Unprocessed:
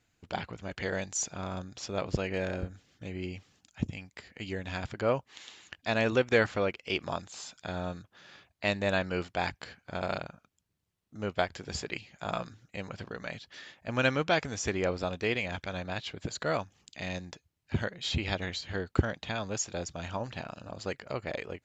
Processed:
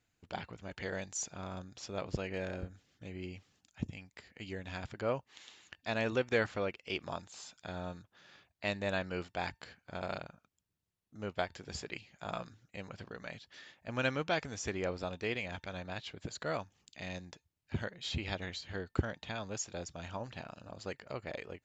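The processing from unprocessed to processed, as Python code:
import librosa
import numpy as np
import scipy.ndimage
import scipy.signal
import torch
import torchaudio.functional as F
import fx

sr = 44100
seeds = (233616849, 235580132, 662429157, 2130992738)

y = fx.comb_fb(x, sr, f0_hz=900.0, decay_s=0.29, harmonics='all', damping=0.0, mix_pct=30)
y = y * 10.0 ** (-3.0 / 20.0)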